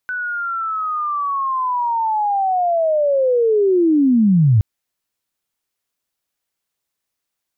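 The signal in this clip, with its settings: sweep linear 1.5 kHz -> 98 Hz -21 dBFS -> -9 dBFS 4.52 s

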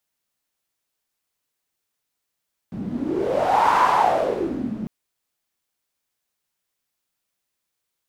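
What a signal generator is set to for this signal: wind-like swept noise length 2.15 s, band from 200 Hz, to 1 kHz, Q 6.3, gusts 1, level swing 12.5 dB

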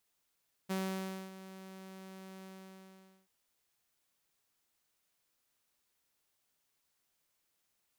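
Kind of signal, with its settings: ADSR saw 190 Hz, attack 20 ms, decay 595 ms, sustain -15.5 dB, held 1.75 s, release 838 ms -30 dBFS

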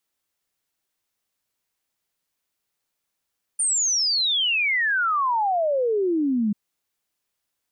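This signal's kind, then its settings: log sweep 9.2 kHz -> 200 Hz 2.94 s -19 dBFS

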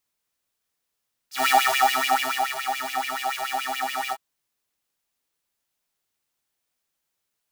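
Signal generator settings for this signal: synth patch with filter wobble C4, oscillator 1 square, oscillator 2 square, interval 0 st, oscillator 2 level -0.5 dB, sub -0.5 dB, noise -5 dB, filter highpass, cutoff 1.1 kHz, Q 4.8, filter decay 0.05 s, filter sustain 15%, attack 149 ms, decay 1.10 s, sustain -10 dB, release 0.05 s, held 2.81 s, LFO 7 Hz, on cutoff 1 oct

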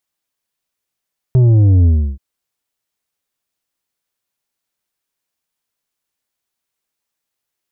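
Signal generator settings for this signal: sub drop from 130 Hz, over 0.83 s, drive 7 dB, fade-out 0.32 s, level -7.5 dB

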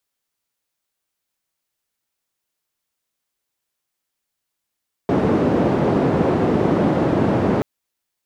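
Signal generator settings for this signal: noise band 130–400 Hz, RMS -17.5 dBFS 2.53 s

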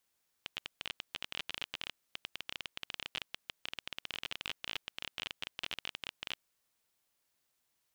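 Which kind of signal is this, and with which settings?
random clicks 21 per s -20.5 dBFS 5.95 s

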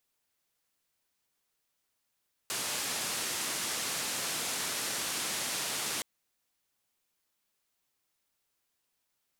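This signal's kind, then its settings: noise band 130–10000 Hz, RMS -34.5 dBFS 3.52 s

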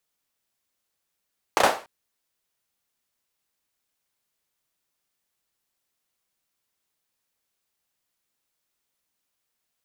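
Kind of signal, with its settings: hand clap length 0.29 s, bursts 3, apart 32 ms, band 710 Hz, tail 0.35 s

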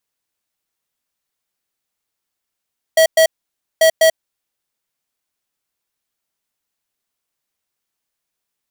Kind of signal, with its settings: beep pattern square 645 Hz, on 0.09 s, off 0.11 s, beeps 2, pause 0.55 s, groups 2, -10 dBFS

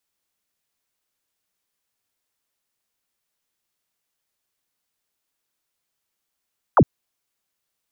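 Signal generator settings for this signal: laser zap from 1.5 kHz, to 87 Hz, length 0.06 s sine, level -9 dB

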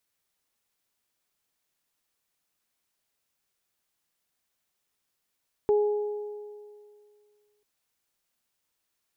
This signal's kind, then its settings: additive tone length 1.94 s, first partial 417 Hz, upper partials -14 dB, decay 2.17 s, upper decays 1.89 s, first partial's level -18 dB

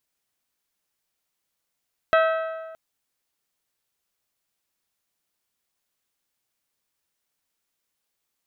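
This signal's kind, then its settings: metal hit bell, length 0.62 s, lowest mode 647 Hz, modes 7, decay 1.53 s, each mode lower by 4 dB, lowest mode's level -15 dB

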